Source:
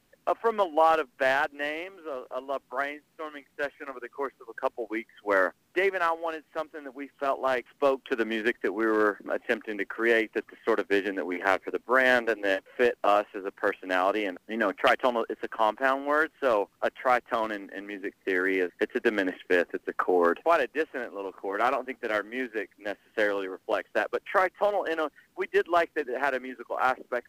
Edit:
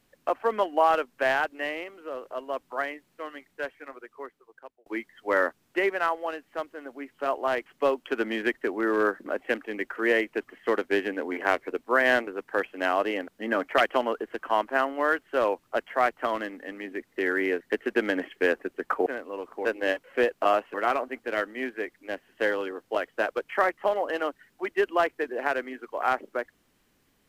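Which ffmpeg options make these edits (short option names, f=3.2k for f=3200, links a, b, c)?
-filter_complex "[0:a]asplit=6[a][b][c][d][e][f];[a]atrim=end=4.86,asetpts=PTS-STARTPTS,afade=t=out:st=3.32:d=1.54[g];[b]atrim=start=4.86:end=12.272,asetpts=PTS-STARTPTS,afade=t=in:d=0.004:c=hsin[h];[c]atrim=start=13.358:end=20.152[i];[d]atrim=start=20.918:end=21.512[j];[e]atrim=start=12.268:end=13.362[k];[f]atrim=start=21.508[l];[g][h]concat=n=2:v=0:a=1[m];[m][i]acrossfade=d=0.004:c1=hsin:c2=hsin[n];[n][j]acrossfade=d=0.004:c1=hsin:c2=hsin[o];[o][k]acrossfade=d=0.004:c1=hsin:c2=hsin[p];[p][l]acrossfade=d=0.004:c1=hsin:c2=hsin"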